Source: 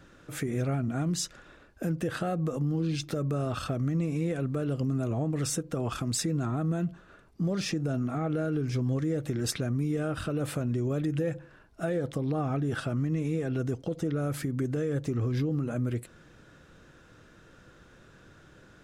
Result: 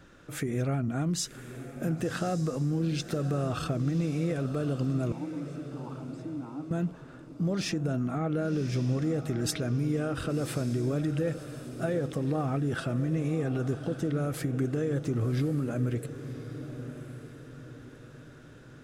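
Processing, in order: 5.12–6.71 double band-pass 510 Hz, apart 1.6 oct; on a send: diffused feedback echo 1.105 s, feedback 41%, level -11 dB

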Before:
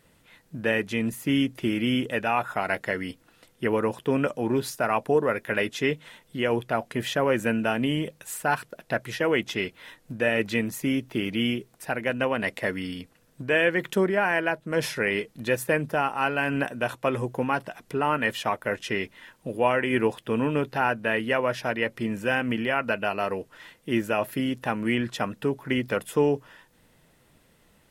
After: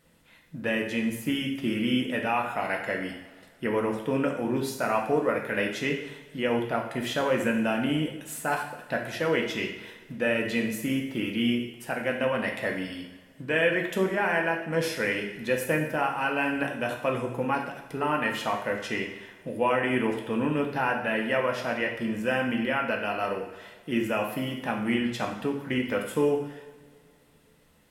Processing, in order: two-slope reverb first 0.78 s, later 2.5 s, DRR 1 dB; gain -4 dB

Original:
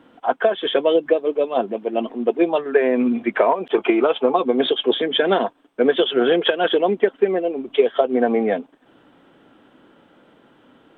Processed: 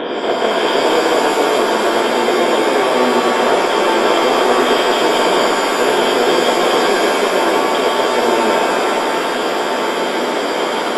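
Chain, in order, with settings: per-bin compression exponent 0.2; in parallel at -3.5 dB: soft clip -6 dBFS, distortion -12 dB; on the sum: shimmer reverb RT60 2.3 s, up +7 st, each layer -2 dB, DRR 0 dB; gain -13 dB

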